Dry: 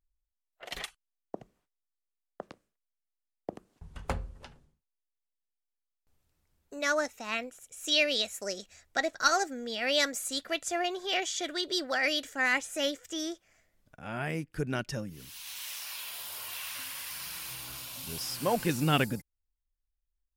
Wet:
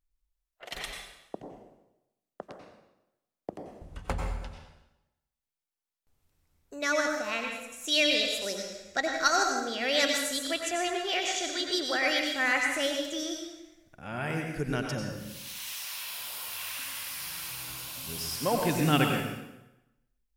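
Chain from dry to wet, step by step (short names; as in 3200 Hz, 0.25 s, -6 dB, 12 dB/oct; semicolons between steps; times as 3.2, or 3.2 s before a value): plate-style reverb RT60 0.95 s, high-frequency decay 0.9×, pre-delay 80 ms, DRR 1.5 dB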